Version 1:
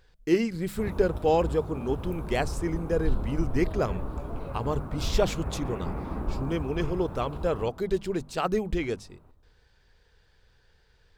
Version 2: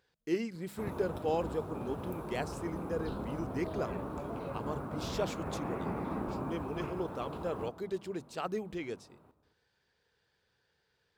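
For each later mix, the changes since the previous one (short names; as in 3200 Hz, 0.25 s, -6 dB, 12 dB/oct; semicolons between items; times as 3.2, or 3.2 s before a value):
speech -9.0 dB; master: add HPF 140 Hz 12 dB/oct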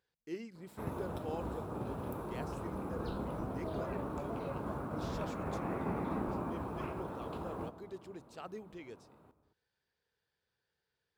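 speech -10.0 dB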